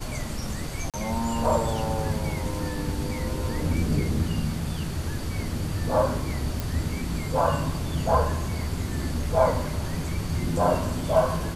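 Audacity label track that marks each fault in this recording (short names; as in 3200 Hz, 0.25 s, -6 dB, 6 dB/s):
0.900000	0.940000	gap 37 ms
6.600000	6.600000	pop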